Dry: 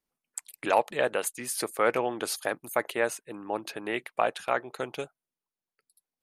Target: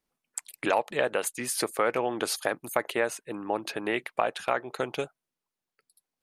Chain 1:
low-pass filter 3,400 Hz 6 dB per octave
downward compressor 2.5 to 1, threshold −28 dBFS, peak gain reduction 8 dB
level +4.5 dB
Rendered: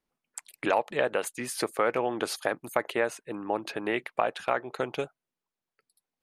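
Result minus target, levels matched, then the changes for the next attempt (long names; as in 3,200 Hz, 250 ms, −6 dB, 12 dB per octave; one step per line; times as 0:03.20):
8,000 Hz band −5.0 dB
change: low-pass filter 8,500 Hz 6 dB per octave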